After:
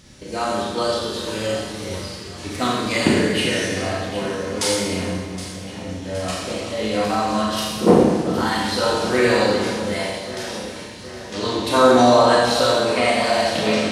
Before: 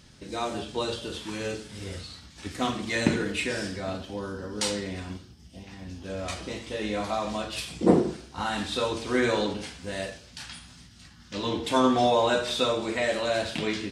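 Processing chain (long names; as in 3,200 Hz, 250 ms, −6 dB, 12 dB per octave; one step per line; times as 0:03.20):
delay that swaps between a low-pass and a high-pass 384 ms, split 1,900 Hz, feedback 75%, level −10.5 dB
formants moved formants +2 semitones
four-comb reverb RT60 1.2 s, combs from 29 ms, DRR −1.5 dB
level +4.5 dB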